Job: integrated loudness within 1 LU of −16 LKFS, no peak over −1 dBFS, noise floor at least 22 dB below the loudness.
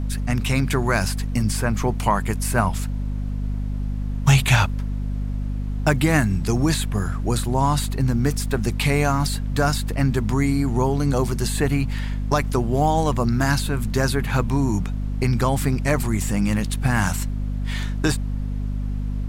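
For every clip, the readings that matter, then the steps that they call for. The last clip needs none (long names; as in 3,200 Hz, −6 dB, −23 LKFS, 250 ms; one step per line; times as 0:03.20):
mains hum 50 Hz; hum harmonics up to 250 Hz; level of the hum −23 dBFS; background noise floor −26 dBFS; target noise floor −45 dBFS; integrated loudness −22.5 LKFS; sample peak −4.0 dBFS; target loudness −16.0 LKFS
→ mains-hum notches 50/100/150/200/250 Hz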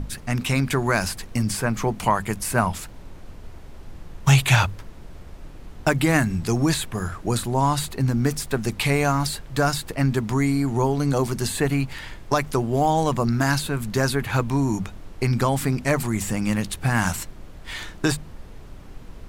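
mains hum none found; background noise floor −41 dBFS; target noise floor −45 dBFS
→ noise reduction from a noise print 6 dB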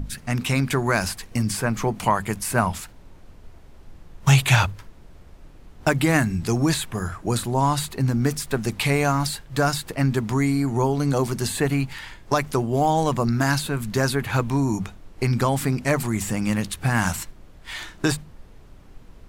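background noise floor −47 dBFS; integrated loudness −23.0 LKFS; sample peak −5.0 dBFS; target loudness −16.0 LKFS
→ level +7 dB
brickwall limiter −1 dBFS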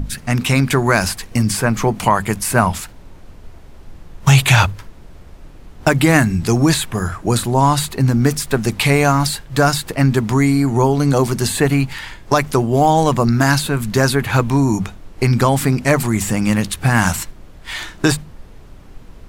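integrated loudness −16.0 LKFS; sample peak −1.0 dBFS; background noise floor −40 dBFS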